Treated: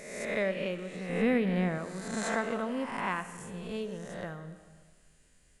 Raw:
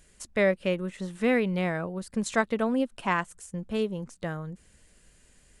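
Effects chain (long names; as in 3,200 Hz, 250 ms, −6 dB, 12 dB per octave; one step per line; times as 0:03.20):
peak hold with a rise ahead of every peak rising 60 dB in 1.16 s
0:01.09–0:01.78: low-shelf EQ 430 Hz +8.5 dB
convolution reverb RT60 1.6 s, pre-delay 15 ms, DRR 10.5 dB
level −8.5 dB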